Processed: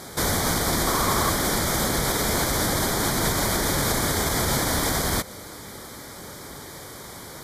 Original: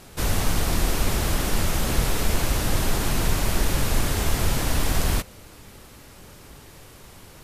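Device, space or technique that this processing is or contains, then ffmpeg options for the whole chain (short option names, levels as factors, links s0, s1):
PA system with an anti-feedback notch: -filter_complex "[0:a]highpass=f=190:p=1,asuperstop=centerf=2700:order=4:qfactor=3.2,alimiter=limit=0.075:level=0:latency=1:release=115,asettb=1/sr,asplit=3[s0][s1][s2];[s0]atrim=end=0.874[s3];[s1]atrim=start=0.87:end=1.3,asetpts=PTS-STARTPTS,afade=t=in:d=0.004:c=qsin,afade=t=out:st=0.426:d=0.004:c=qsin,equalizer=f=1100:t=o:w=0.36:g=10.5[s4];[s2]atrim=start=1.296[s5];[s3][s4]acrossfade=d=0.004:c1=hsin:c2=qsin[s6];[s6][s5]acrossfade=d=0.004:c1=qsin:c2=hsin,volume=2.82"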